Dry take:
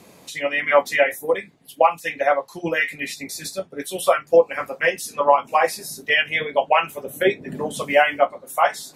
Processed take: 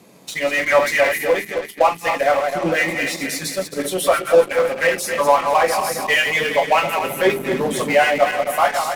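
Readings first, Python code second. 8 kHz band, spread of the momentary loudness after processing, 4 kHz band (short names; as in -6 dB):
+6.0 dB, 7 LU, +4.0 dB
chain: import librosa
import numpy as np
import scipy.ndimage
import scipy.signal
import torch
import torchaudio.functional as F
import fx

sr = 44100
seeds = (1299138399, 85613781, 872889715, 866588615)

p1 = fx.reverse_delay_fb(x, sr, ms=132, feedback_pct=63, wet_db=-8)
p2 = scipy.signal.sosfilt(scipy.signal.butter(2, 140.0, 'highpass', fs=sr, output='sos'), p1)
p3 = fx.low_shelf(p2, sr, hz=260.0, db=7.5)
p4 = fx.hum_notches(p3, sr, base_hz=50, count=8)
p5 = fx.fuzz(p4, sr, gain_db=29.0, gate_db=-37.0)
p6 = p4 + (p5 * 10.0 ** (-9.5 / 20.0))
y = p6 * 10.0 ** (-2.0 / 20.0)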